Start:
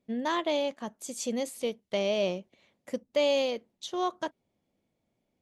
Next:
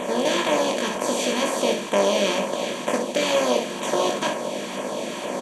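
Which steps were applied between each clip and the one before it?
compressor on every frequency bin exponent 0.2
auto-filter notch saw down 2.1 Hz 400–5,400 Hz
on a send: ambience of single reflections 20 ms −4.5 dB, 63 ms −6.5 dB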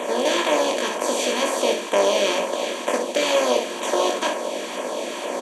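high-pass filter 270 Hz 24 dB per octave
level +1.5 dB

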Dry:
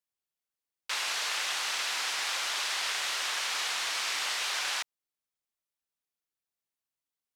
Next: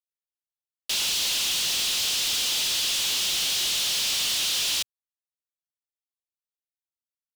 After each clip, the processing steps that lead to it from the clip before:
elliptic band-stop filter 110–3,000 Hz
leveller curve on the samples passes 5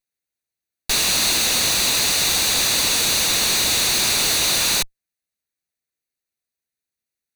lower of the sound and its delayed copy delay 0.48 ms
level +8.5 dB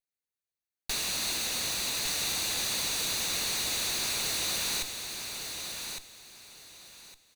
brickwall limiter −16.5 dBFS, peak gain reduction 5 dB
repeating echo 1,159 ms, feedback 23%, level −6.5 dB
level −8.5 dB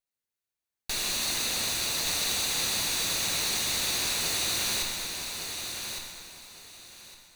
dense smooth reverb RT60 2.4 s, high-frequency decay 0.75×, DRR 1 dB

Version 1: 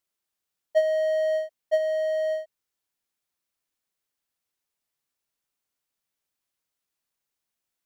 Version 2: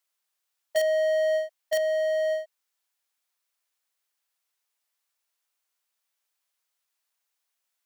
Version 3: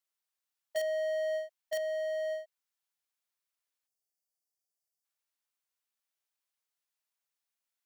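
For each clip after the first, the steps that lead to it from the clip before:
high-pass filter 650 Hz 12 dB per octave; in parallel at −5.5 dB: wrap-around overflow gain 23 dB
time-frequency box erased 0:03.87–0:05.05, 800–4,400 Hz; level −8.5 dB

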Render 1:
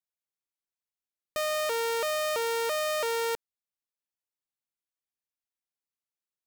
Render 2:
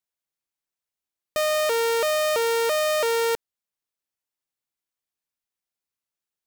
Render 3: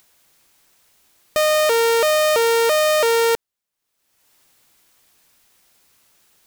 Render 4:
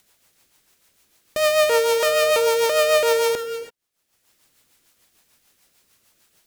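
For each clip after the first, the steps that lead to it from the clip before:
leveller curve on the samples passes 1; level +5.5 dB
upward compression, threshold −44 dBFS; level +6 dB
reverb whose tail is shaped and stops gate 360 ms flat, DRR 8.5 dB; rotating-speaker cabinet horn 6.7 Hz

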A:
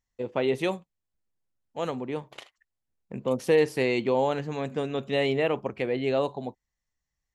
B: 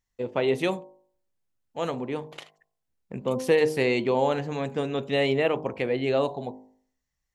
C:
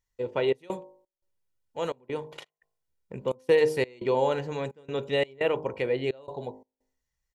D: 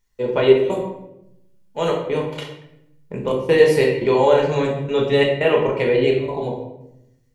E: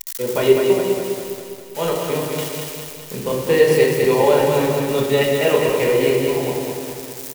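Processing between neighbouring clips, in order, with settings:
hum removal 51.69 Hz, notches 21; level +2 dB
comb filter 2.1 ms, depth 39%; gate pattern "xxx.xx.x" 86 BPM −24 dB; level −2.5 dB
in parallel at −1 dB: brickwall limiter −20 dBFS, peak gain reduction 9 dB; on the sum: rectangular room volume 240 cubic metres, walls mixed, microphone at 1.3 metres; level +2 dB
spike at every zero crossing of −19 dBFS; repeating echo 203 ms, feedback 57%, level −4.5 dB; level −1 dB

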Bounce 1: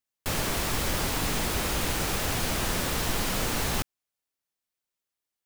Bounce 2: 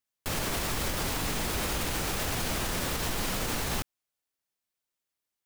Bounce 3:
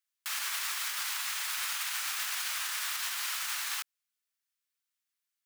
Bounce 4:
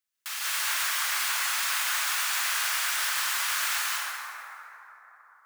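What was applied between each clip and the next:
brickwall limiter −21 dBFS, peak gain reduction 6 dB
high-pass filter 1,200 Hz 24 dB per octave
dense smooth reverb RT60 3.8 s, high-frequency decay 0.35×, pre-delay 110 ms, DRR −8 dB

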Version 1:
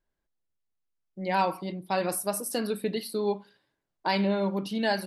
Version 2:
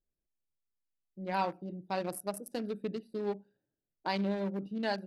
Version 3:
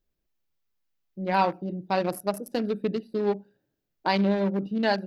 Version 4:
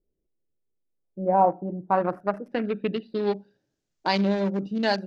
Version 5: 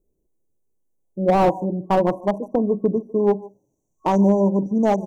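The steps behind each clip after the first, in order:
adaptive Wiener filter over 41 samples; level −5.5 dB
parametric band 9,100 Hz −10.5 dB 0.68 octaves; level +9 dB
low-pass filter sweep 430 Hz → 6,900 Hz, 0:00.89–0:03.80
far-end echo of a speakerphone 150 ms, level −19 dB; brick-wall band-stop 1,100–5,700 Hz; slew-rate limiting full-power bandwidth 59 Hz; level +7.5 dB

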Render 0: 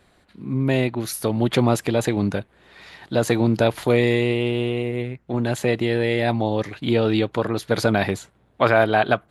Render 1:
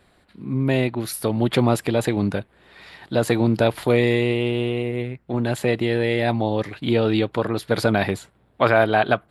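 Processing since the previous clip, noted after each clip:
parametric band 6,300 Hz −8 dB 0.25 octaves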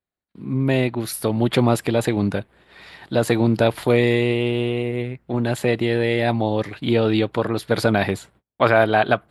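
noise gate −51 dBFS, range −34 dB
level +1 dB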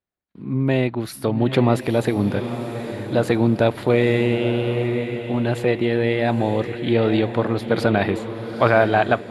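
high-shelf EQ 5,000 Hz −10 dB
feedback delay with all-pass diffusion 909 ms, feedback 42%, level −9 dB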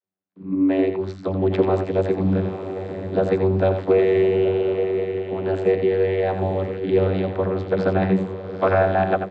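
single-tap delay 87 ms −8 dB
channel vocoder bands 32, saw 94.9 Hz

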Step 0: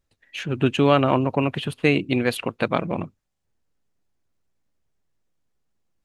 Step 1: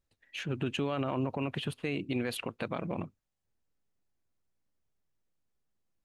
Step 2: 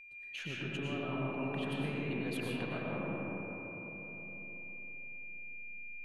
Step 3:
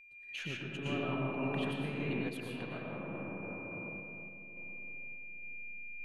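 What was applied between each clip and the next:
brickwall limiter −15 dBFS, peak gain reduction 11 dB; level −7 dB
downward compressor 4 to 1, threshold −40 dBFS, peak gain reduction 11 dB; steady tone 2,400 Hz −49 dBFS; comb and all-pass reverb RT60 4.4 s, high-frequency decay 0.25×, pre-delay 70 ms, DRR −5.5 dB; level −2 dB
sample-and-hold tremolo 3.5 Hz; level +2.5 dB

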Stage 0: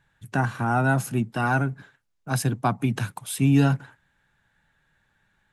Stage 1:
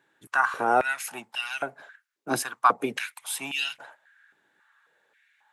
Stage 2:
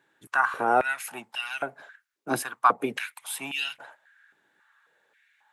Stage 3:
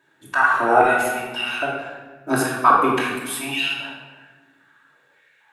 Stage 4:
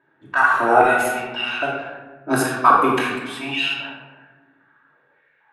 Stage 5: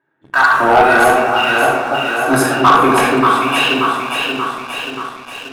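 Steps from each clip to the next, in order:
high-pass on a step sequencer 3.7 Hz 340–2,900 Hz
dynamic equaliser 5,900 Hz, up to −6 dB, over −48 dBFS, Q 1.1
rectangular room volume 1,000 cubic metres, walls mixed, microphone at 2.8 metres; level +2 dB
low-pass that shuts in the quiet parts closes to 1,600 Hz, open at −16.5 dBFS; level +1 dB
delay that swaps between a low-pass and a high-pass 291 ms, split 850 Hz, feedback 76%, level −2.5 dB; leveller curve on the samples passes 2; level −1 dB

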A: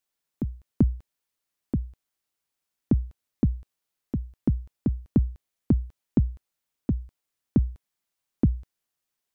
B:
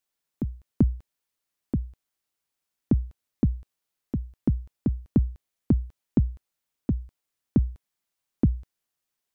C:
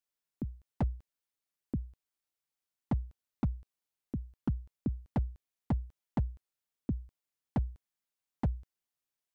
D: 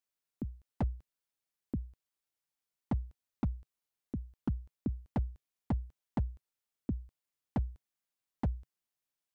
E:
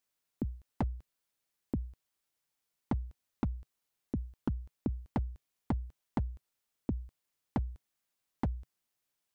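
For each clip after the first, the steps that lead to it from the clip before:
no processing that can be heard
wave folding −15 dBFS; level −8 dB
dynamic equaliser 140 Hz, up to −4 dB, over −49 dBFS, Q 4.6; level −1 dB
downward compressor, threshold −35 dBFS, peak gain reduction 8 dB; level +5.5 dB

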